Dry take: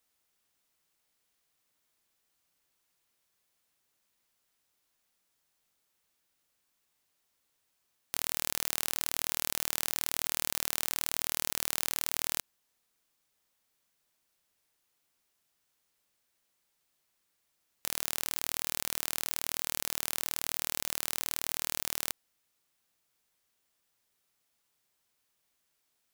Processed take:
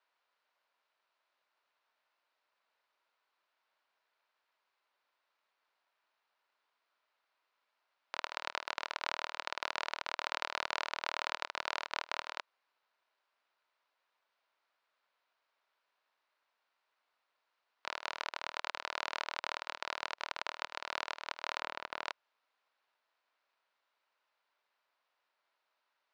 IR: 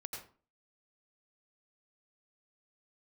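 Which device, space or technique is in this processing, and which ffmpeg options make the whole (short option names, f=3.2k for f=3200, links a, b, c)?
voice changer toy: -filter_complex "[0:a]aeval=exprs='val(0)*sin(2*PI*1300*n/s+1300*0.8/0.58*sin(2*PI*0.58*n/s))':c=same,highpass=530,equalizer=f=610:t=q:w=4:g=5,equalizer=f=980:t=q:w=4:g=7,equalizer=f=1.4k:t=q:w=4:g=5,equalizer=f=3.3k:t=q:w=4:g=-4,lowpass=f=4k:w=0.5412,lowpass=f=4k:w=1.3066,asettb=1/sr,asplit=3[a][b][c];[a]atrim=end=21.604[d];[b]atrim=start=21.6:end=22.05,asetpts=PTS-STARTPTS,afade=t=in:d=0.004:c=qsin,afade=t=out:st=0.446:d=0.004:c=qsin,aemphasis=mode=reproduction:type=bsi[e];[c]atrim=start=22.046[f];[d][e]acrossfade=d=0.004:c1=hsin:c2=qsin[g];[g][f]acrossfade=d=0.004:c1=qsin:c2=hsin,volume=3.5dB"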